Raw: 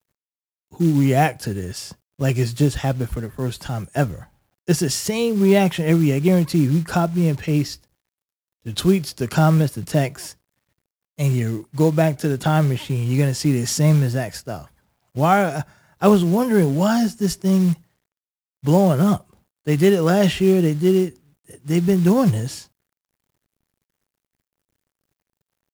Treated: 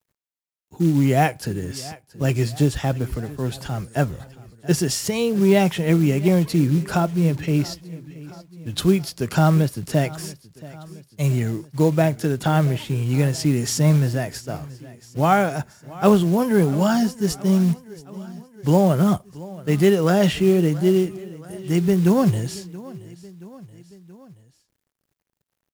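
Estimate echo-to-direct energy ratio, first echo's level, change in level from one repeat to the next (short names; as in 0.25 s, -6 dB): -18.0 dB, -19.5 dB, -4.5 dB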